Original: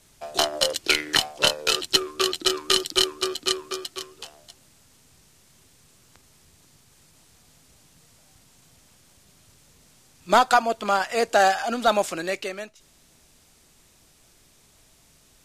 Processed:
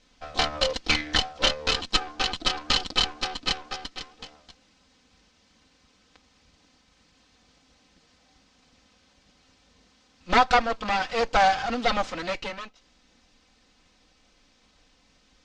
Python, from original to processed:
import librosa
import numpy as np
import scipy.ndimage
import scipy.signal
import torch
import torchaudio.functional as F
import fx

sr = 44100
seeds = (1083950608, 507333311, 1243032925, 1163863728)

y = fx.lower_of_two(x, sr, delay_ms=3.9)
y = scipy.signal.sosfilt(scipy.signal.butter(4, 5500.0, 'lowpass', fs=sr, output='sos'), y)